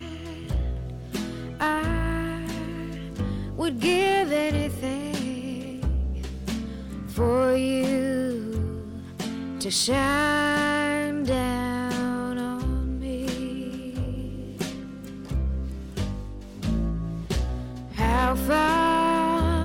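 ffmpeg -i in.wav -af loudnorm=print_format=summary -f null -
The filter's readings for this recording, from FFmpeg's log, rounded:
Input Integrated:    -26.2 LUFS
Input True Peak:     -15.1 dBTP
Input LRA:             7.0 LU
Input Threshold:     -36.3 LUFS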